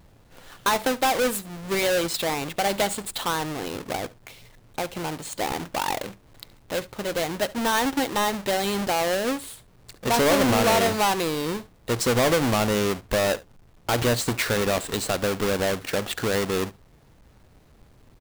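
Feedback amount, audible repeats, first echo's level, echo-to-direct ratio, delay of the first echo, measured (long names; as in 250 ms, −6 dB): repeats not evenly spaced, 1, −20.5 dB, −20.5 dB, 71 ms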